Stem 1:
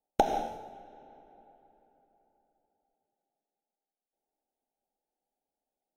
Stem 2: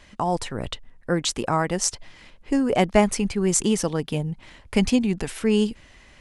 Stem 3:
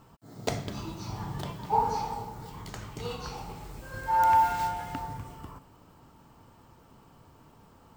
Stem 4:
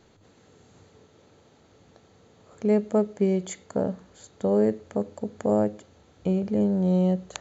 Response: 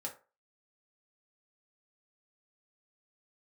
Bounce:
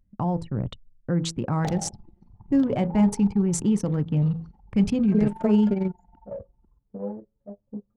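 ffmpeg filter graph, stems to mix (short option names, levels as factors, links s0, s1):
-filter_complex "[0:a]adelay=1450,volume=0.335,asplit=2[s0][s1];[s1]volume=0.531[s2];[1:a]equalizer=f=160:t=o:w=2.1:g=13,bandreject=f=82.18:t=h:w=4,bandreject=f=164.36:t=h:w=4,bandreject=f=246.54:t=h:w=4,bandreject=f=328.72:t=h:w=4,bandreject=f=410.9:t=h:w=4,bandreject=f=493.08:t=h:w=4,volume=0.355,asplit=3[s3][s4][s5];[s4]volume=0.376[s6];[2:a]acrossover=split=150|3000[s7][s8][s9];[s8]acompressor=threshold=0.01:ratio=2[s10];[s7][s10][s9]amix=inputs=3:normalize=0,adelay=1200,volume=0.75[s11];[3:a]aecho=1:1:4.8:0.38,aphaser=in_gain=1:out_gain=1:delay=4.7:decay=0.65:speed=0.57:type=triangular,adelay=2500,volume=1.12,asplit=2[s12][s13];[s13]volume=0.178[s14];[s5]apad=whole_len=436858[s15];[s12][s15]sidechaingate=range=0.0224:threshold=0.00316:ratio=16:detection=peak[s16];[s0][s3]amix=inputs=2:normalize=0,equalizer=f=120:w=2.9:g=6,alimiter=limit=0.133:level=0:latency=1:release=35,volume=1[s17];[s11][s16]amix=inputs=2:normalize=0,tremolo=f=22:d=0.571,alimiter=limit=0.15:level=0:latency=1:release=218,volume=1[s18];[4:a]atrim=start_sample=2205[s19];[s2][s6][s14]amix=inputs=3:normalize=0[s20];[s20][s19]afir=irnorm=-1:irlink=0[s21];[s17][s18][s21]amix=inputs=3:normalize=0,anlmdn=15.8"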